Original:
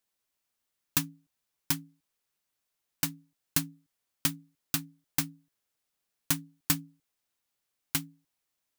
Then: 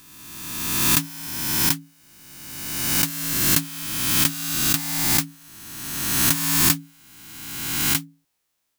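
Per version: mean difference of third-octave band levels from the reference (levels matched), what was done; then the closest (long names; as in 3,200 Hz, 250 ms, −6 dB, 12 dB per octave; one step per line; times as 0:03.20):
10.0 dB: peak hold with a rise ahead of every peak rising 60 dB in 1.67 s
level +5 dB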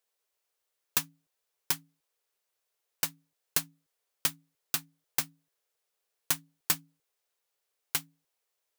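3.0 dB: low shelf with overshoot 340 Hz −8 dB, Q 3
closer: second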